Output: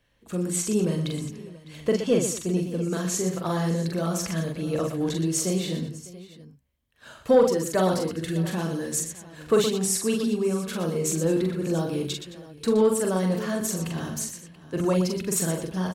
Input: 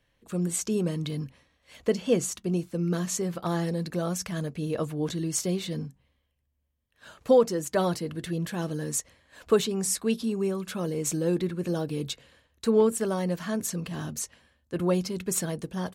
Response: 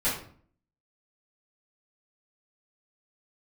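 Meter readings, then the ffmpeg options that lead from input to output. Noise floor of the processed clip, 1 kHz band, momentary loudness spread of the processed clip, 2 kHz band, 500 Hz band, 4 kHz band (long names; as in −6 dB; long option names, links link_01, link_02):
−51 dBFS, +3.0 dB, 12 LU, +3.5 dB, +2.5 dB, +3.0 dB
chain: -af "aecho=1:1:43|120|216|604|683:0.668|0.355|0.133|0.1|0.133,acontrast=90,volume=-6dB"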